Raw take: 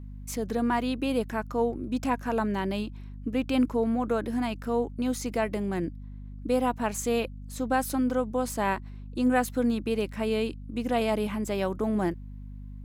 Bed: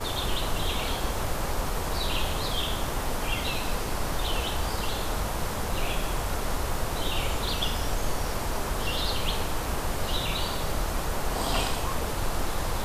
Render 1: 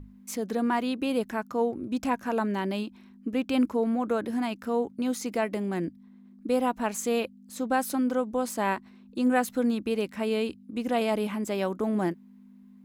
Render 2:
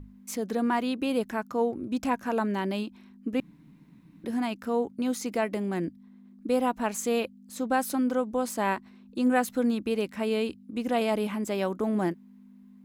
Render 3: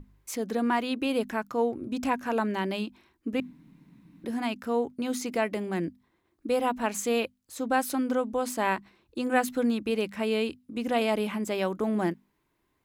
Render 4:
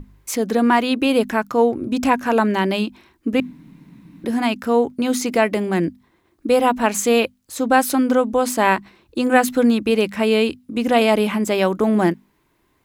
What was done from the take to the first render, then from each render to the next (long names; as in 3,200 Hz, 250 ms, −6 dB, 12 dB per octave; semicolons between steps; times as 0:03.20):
mains-hum notches 50/100/150 Hz
0:03.40–0:04.24: fill with room tone
mains-hum notches 50/100/150/200/250 Hz; dynamic equaliser 2,600 Hz, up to +3 dB, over −44 dBFS, Q 0.91
level +10.5 dB; brickwall limiter −2 dBFS, peak gain reduction 1.5 dB